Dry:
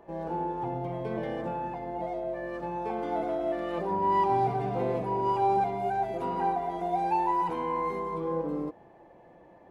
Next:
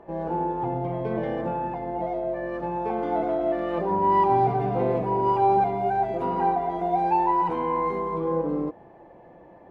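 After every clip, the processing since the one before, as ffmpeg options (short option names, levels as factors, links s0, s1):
-af "lowpass=f=2100:p=1,volume=1.88"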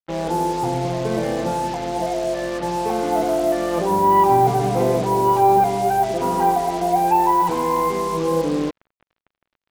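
-af "acrusher=bits=5:mix=0:aa=0.5,volume=1.88"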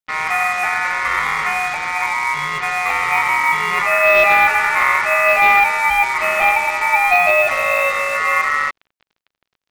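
-af "asoftclip=type=hard:threshold=0.316,aeval=exprs='val(0)*sin(2*PI*1600*n/s)':c=same,volume=2"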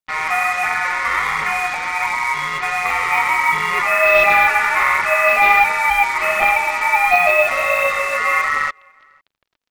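-filter_complex "[0:a]asplit=2[s0][s1];[s1]adelay=501.5,volume=0.0316,highshelf=f=4000:g=-11.3[s2];[s0][s2]amix=inputs=2:normalize=0,aphaser=in_gain=1:out_gain=1:delay=4.4:decay=0.35:speed=1.4:type=triangular,volume=0.891"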